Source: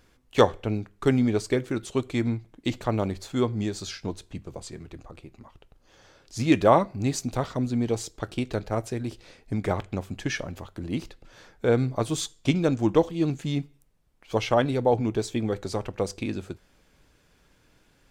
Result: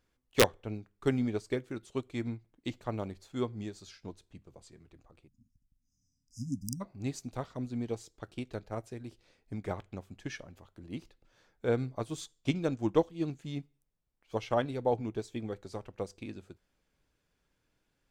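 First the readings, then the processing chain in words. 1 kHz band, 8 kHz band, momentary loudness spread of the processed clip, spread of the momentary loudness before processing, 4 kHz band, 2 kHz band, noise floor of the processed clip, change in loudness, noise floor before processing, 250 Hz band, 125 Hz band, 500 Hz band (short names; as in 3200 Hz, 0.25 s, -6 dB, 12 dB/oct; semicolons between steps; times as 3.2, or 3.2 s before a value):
-11.0 dB, -8.0 dB, 16 LU, 15 LU, -7.0 dB, -7.0 dB, -79 dBFS, -9.0 dB, -63 dBFS, -9.5 dB, -10.0 dB, -8.5 dB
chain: wrapped overs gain 5.5 dB; spectral delete 5.28–6.81, 300–4900 Hz; upward expander 1.5:1, over -36 dBFS; gain -4.5 dB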